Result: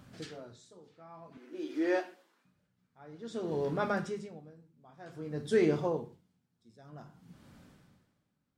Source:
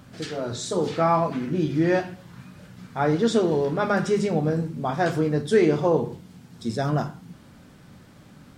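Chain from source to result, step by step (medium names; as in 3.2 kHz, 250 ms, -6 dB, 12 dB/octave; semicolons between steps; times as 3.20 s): 1.37–2.45 s: steep high-pass 290 Hz 36 dB/octave; logarithmic tremolo 0.53 Hz, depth 26 dB; trim -7.5 dB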